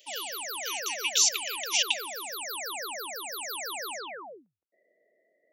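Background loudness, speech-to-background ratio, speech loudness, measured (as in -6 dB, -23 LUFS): -34.5 LUFS, 7.5 dB, -27.0 LUFS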